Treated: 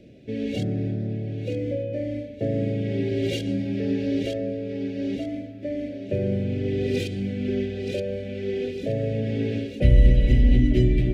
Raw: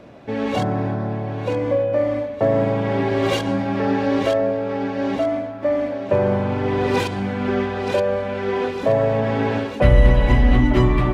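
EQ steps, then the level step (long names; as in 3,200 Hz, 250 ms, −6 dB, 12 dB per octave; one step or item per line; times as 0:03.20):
Chebyshev band-stop filter 440–2,500 Hz, order 2
low-shelf EQ 220 Hz +5 dB
−5.5 dB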